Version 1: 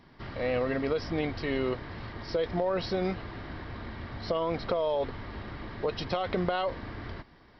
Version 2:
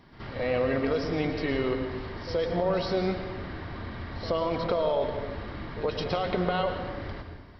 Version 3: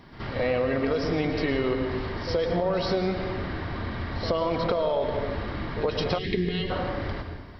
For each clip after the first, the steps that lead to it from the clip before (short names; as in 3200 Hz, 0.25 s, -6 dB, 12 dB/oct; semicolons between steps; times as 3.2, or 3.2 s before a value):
reverse echo 74 ms -13 dB; reverb RT60 1.1 s, pre-delay 0.104 s, DRR 6 dB; gain +1 dB
spectral gain 6.18–6.7, 460–1600 Hz -23 dB; compressor, threshold -27 dBFS, peak gain reduction 5.5 dB; gain +5.5 dB